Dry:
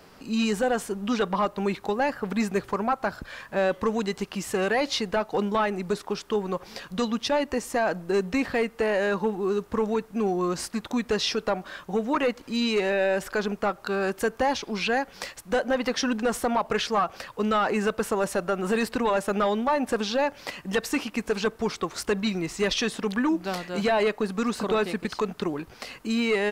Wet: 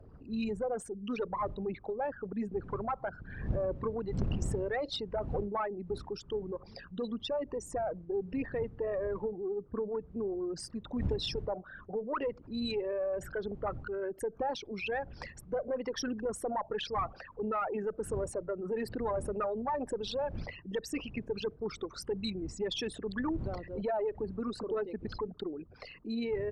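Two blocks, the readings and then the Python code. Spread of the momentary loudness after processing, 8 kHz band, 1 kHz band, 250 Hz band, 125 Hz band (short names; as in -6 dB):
5 LU, -12.0 dB, -10.5 dB, -10.5 dB, -4.0 dB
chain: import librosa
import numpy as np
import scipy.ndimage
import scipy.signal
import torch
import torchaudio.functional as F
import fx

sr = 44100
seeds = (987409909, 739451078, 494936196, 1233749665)

y = fx.envelope_sharpen(x, sr, power=3.0)
y = fx.dmg_wind(y, sr, seeds[0], corner_hz=120.0, level_db=-35.0)
y = fx.cheby_harmonics(y, sr, harmonics=(3, 4, 6), levels_db=(-28, -18, -29), full_scale_db=-8.5)
y = y * 10.0 ** (-8.5 / 20.0)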